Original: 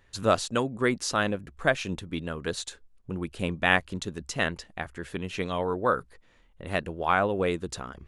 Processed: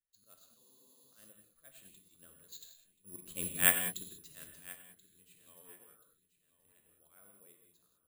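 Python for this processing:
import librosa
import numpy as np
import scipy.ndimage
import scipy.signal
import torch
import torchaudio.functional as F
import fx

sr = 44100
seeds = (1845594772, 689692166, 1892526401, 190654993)

p1 = fx.doppler_pass(x, sr, speed_mps=7, closest_m=1.9, pass_at_s=3.44)
p2 = fx.peak_eq(p1, sr, hz=810.0, db=-13.0, octaves=0.21)
p3 = fx.auto_swell(p2, sr, attack_ms=117.0)
p4 = fx.lowpass_res(p3, sr, hz=4000.0, q=3.0)
p5 = p4 + fx.echo_feedback(p4, sr, ms=1031, feedback_pct=33, wet_db=-15.0, dry=0)
p6 = fx.rev_gated(p5, sr, seeds[0], gate_ms=220, shape='flat', drr_db=1.5)
p7 = (np.kron(scipy.signal.resample_poly(p6, 1, 4), np.eye(4)[0]) * 4)[:len(p6)]
p8 = fx.spec_freeze(p7, sr, seeds[1], at_s=0.61, hold_s=0.52)
p9 = fx.upward_expand(p8, sr, threshold_db=-42.0, expansion=1.5)
y = p9 * 10.0 ** (-7.0 / 20.0)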